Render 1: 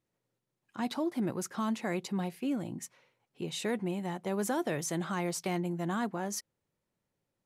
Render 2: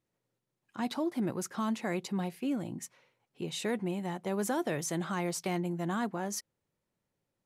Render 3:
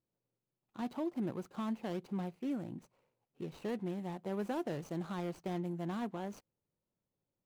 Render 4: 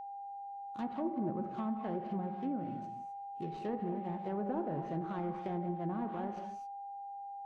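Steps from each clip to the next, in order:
nothing audible
median filter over 25 samples; gain -4.5 dB
non-linear reverb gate 0.29 s flat, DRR 4.5 dB; treble ducked by the level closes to 1100 Hz, closed at -32.5 dBFS; whine 800 Hz -42 dBFS

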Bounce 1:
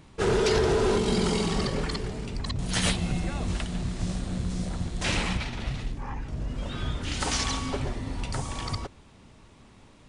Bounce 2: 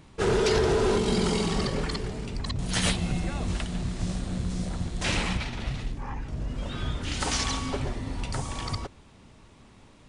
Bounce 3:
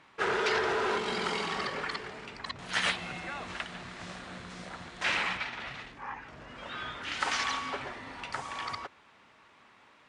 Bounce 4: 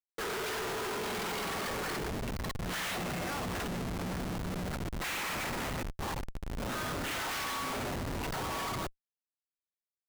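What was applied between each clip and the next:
nothing audible
band-pass 1600 Hz, Q 1.1; gain +4 dB
Schmitt trigger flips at -40 dBFS

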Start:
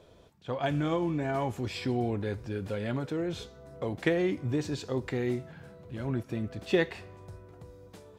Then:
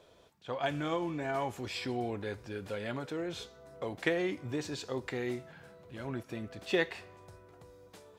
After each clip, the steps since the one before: low shelf 340 Hz -10.5 dB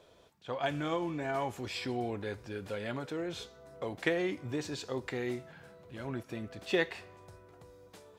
nothing audible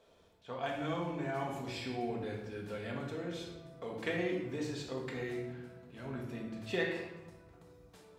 shoebox room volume 500 m³, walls mixed, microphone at 1.6 m; gain -7 dB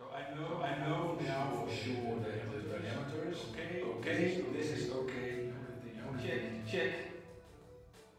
reverse echo 0.49 s -5.5 dB; chorus voices 4, 0.8 Hz, delay 27 ms, depth 1.5 ms; gain +2 dB

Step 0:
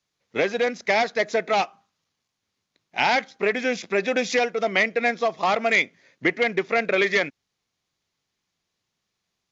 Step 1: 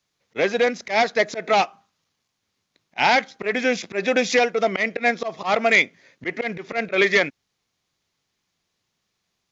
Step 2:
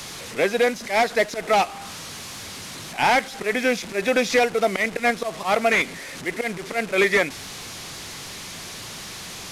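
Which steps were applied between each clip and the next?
auto swell 0.107 s; gain +3.5 dB
delta modulation 64 kbps, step -30 dBFS

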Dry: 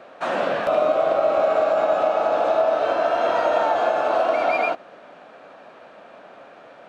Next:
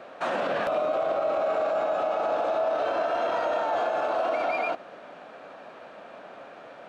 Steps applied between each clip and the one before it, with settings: limiter -19 dBFS, peak gain reduction 9 dB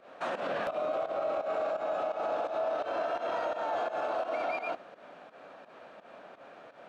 pump 85 bpm, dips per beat 2, -14 dB, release 0.12 s; gain -5.5 dB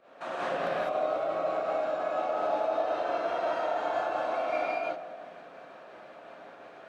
on a send: dark delay 82 ms, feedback 77%, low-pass 1200 Hz, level -14 dB; on the sum: non-linear reverb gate 0.23 s rising, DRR -6 dB; gain -4.5 dB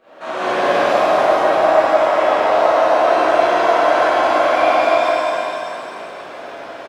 tapped delay 0.167/0.474 s -5/-8.5 dB; shimmer reverb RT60 2 s, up +7 st, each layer -8 dB, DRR -9 dB; gain +5 dB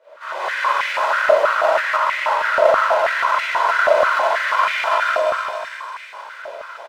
minimum comb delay 2 ms; stepped high-pass 6.2 Hz 620–2100 Hz; gain -5.5 dB

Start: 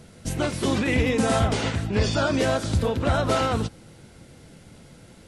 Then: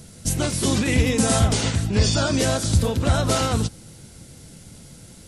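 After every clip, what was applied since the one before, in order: tone controls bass +6 dB, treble +13 dB; gain -1 dB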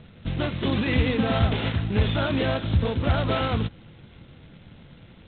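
gain -3 dB; G.726 16 kbps 8000 Hz

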